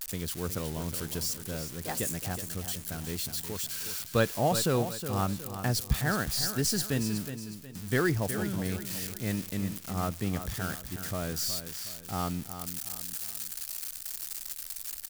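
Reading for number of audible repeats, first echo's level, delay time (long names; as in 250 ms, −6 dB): 3, −10.0 dB, 366 ms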